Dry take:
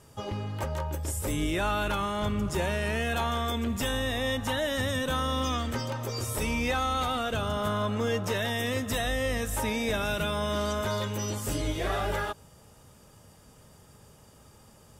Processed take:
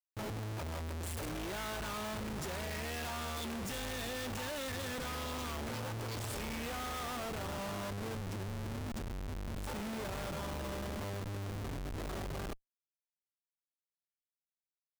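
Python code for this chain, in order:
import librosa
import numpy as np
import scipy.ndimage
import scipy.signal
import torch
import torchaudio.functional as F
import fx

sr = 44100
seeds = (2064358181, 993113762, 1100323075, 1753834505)

y = fx.doppler_pass(x, sr, speed_mps=14, closest_m=11.0, pass_at_s=3.42)
y = fx.spec_box(y, sr, start_s=8.15, length_s=1.52, low_hz=420.0, high_hz=3800.0, gain_db=-26)
y = fx.schmitt(y, sr, flips_db=-49.0)
y = F.gain(torch.from_numpy(y), -2.0).numpy()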